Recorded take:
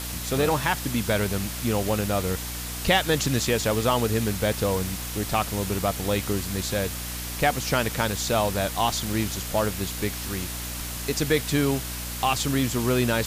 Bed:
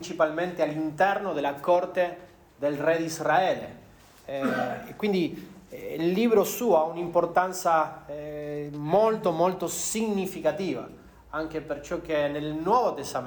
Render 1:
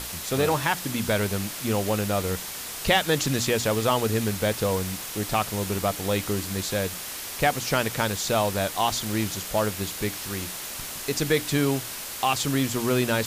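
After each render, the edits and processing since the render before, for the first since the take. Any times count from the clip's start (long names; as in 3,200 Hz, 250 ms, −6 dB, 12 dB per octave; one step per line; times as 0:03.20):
mains-hum notches 60/120/180/240/300 Hz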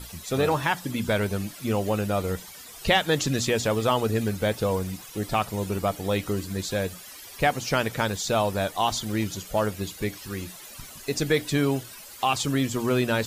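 broadband denoise 14 dB, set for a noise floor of −36 dBFS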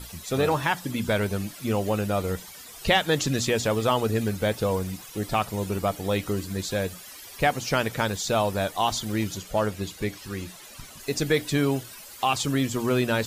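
0:09.38–0:11.00: high-shelf EQ 11,000 Hz −7.5 dB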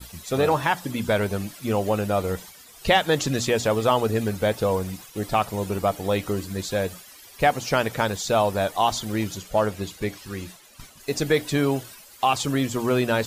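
downward expander −39 dBFS
dynamic equaliser 710 Hz, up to +4 dB, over −36 dBFS, Q 0.77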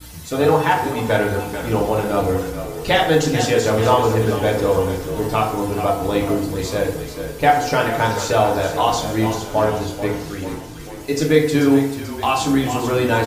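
echo with shifted repeats 437 ms, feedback 55%, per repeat −38 Hz, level −10 dB
feedback delay network reverb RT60 0.74 s, low-frequency decay 0.95×, high-frequency decay 0.55×, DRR −2 dB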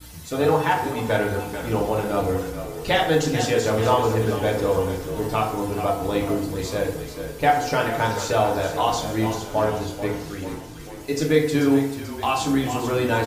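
level −4 dB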